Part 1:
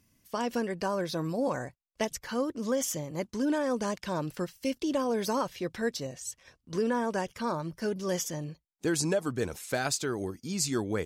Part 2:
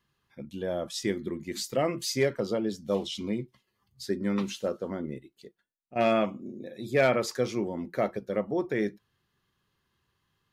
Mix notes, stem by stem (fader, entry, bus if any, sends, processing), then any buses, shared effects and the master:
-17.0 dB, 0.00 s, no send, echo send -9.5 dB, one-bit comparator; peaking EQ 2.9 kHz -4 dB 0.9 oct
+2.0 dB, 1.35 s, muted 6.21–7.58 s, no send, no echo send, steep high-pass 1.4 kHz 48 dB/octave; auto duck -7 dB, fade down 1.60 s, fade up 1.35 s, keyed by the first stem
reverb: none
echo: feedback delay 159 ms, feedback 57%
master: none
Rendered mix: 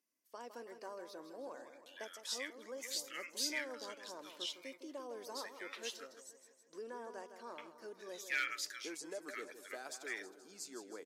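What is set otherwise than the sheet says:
stem 1: missing one-bit comparator; master: extra high-pass 310 Hz 24 dB/octave

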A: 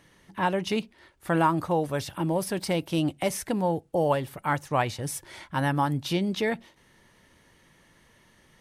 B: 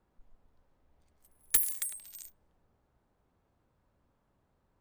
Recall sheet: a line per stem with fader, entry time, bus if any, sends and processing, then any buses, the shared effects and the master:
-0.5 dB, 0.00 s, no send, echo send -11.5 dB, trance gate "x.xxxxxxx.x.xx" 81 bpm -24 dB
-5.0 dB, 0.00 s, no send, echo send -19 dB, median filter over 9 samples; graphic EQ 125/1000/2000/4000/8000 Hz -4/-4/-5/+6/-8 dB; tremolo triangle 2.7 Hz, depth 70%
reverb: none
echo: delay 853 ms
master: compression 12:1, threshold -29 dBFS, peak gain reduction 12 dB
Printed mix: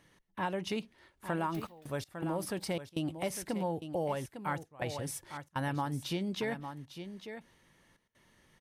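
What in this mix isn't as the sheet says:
stem A -0.5 dB -> -6.5 dB; stem B -5.0 dB -> -15.0 dB

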